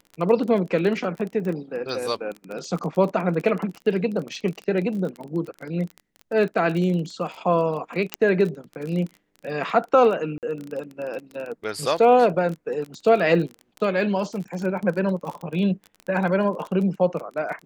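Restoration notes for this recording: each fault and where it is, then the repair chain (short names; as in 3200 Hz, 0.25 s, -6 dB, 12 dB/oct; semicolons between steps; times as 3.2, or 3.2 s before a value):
crackle 26/s -29 dBFS
8.14 pop -7 dBFS
10.38–10.43 gap 48 ms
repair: de-click; interpolate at 10.38, 48 ms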